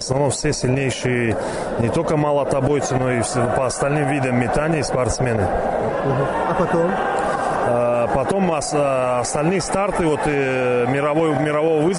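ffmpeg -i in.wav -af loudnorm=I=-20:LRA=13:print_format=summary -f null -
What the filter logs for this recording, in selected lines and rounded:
Input Integrated:    -19.2 LUFS
Input True Peak:      -5.8 dBTP
Input LRA:             0.9 LU
Input Threshold:     -29.2 LUFS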